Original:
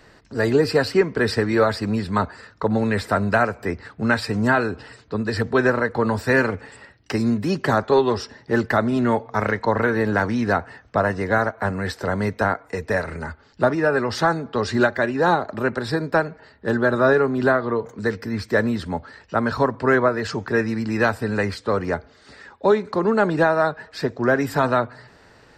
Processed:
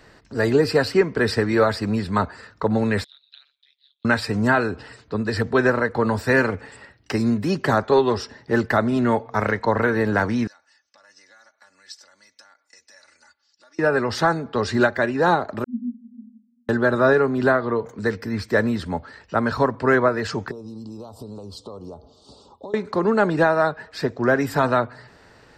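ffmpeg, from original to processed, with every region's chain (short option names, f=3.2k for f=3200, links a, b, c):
-filter_complex "[0:a]asettb=1/sr,asplit=3[a][b][c];[a]atrim=end=3.044[d];[b]atrim=start=3.04:end=4.05,asetpts=PTS-STARTPTS,afade=t=in:d=0.004:c=qsin,afade=t=out:st=1.006:d=0.004:c=qsin,asuperpass=centerf=3600:order=4:qfactor=6.9,acontrast=68,tremolo=f=140:d=0.889[e];[c]atrim=start=4.046[f];[d][e]acrossfade=d=0.004:c1=hsin:c2=qsin[g];[g][f]acrossfade=d=0.004:c1=qsin:c2=hsin,asettb=1/sr,asplit=3[h][i][j];[h]atrim=end=10.474[k];[i]atrim=start=10.47:end=13.79,asetpts=PTS-STARTPTS,afade=t=in:d=0.004:c=qsin,afade=t=out:st=3.316:d=0.004:c=qsin,acompressor=threshold=-25dB:ratio=6:attack=3.2:release=140:knee=1:detection=peak,bandpass=f=5.8k:t=q:w=3,aecho=1:1:3.5:0.7,atrim=end_sample=146412[l];[j]atrim=start=13.786[m];[k][l]acrossfade=d=0.004:c1=hsin:c2=qsin[n];[n][m]acrossfade=d=0.004:c1=qsin:c2=hsin,asettb=1/sr,asplit=3[o][p][q];[o]atrim=end=15.644[r];[p]atrim=start=15.64:end=16.69,asetpts=PTS-STARTPTS,afade=t=in:d=0.004:c=qsin,afade=t=out:st=1.046:d=0.004:c=qsin,acontrast=62,asuperpass=centerf=230:order=20:qfactor=5.6[s];[q]atrim=start=16.686[t];[r][s]acrossfade=d=0.004:c1=hsin:c2=qsin[u];[u][t]acrossfade=d=0.004:c1=qsin:c2=hsin,asettb=1/sr,asplit=3[v][w][x];[v]atrim=end=20.514[y];[w]atrim=start=20.51:end=22.74,asetpts=PTS-STARTPTS,afade=t=in:d=0.004:c=qsin,afade=t=out:st=2.226:d=0.004:c=qsin,acompressor=threshold=-32dB:ratio=12:attack=3.2:release=140:knee=1:detection=peak,asuperstop=centerf=1900:order=8:qfactor=0.91[z];[x]atrim=start=22.736[aa];[y][z]acrossfade=d=0.004:c1=hsin:c2=qsin[ab];[ab][aa]acrossfade=d=0.004:c1=qsin:c2=hsin"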